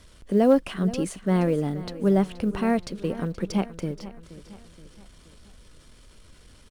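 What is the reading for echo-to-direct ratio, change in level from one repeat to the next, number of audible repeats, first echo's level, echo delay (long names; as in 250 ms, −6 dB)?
−15.0 dB, −6.0 dB, 4, −16.0 dB, 475 ms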